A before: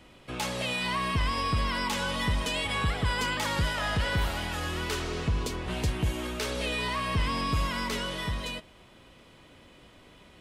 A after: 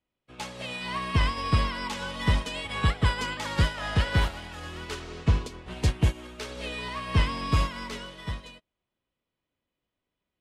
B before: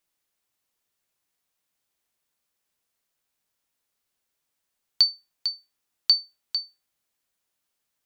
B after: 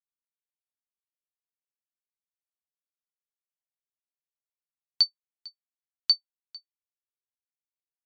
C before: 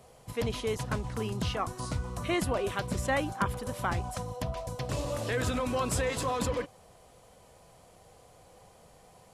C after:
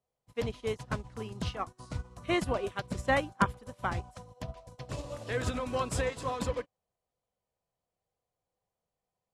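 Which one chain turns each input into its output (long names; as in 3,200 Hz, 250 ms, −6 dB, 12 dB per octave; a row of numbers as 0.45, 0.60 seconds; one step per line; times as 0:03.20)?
Bessel low-pass filter 8,700 Hz, order 2
expander for the loud parts 2.5 to 1, over −49 dBFS
normalise the peak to −12 dBFS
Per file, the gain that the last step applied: +7.5, −1.0, +4.5 decibels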